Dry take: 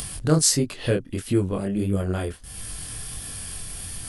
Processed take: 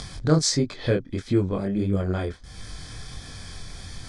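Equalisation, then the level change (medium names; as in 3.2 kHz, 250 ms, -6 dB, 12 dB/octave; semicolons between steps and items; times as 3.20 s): Butterworth band-stop 2.8 kHz, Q 5.5; low-pass 6.3 kHz 24 dB/octave; 0.0 dB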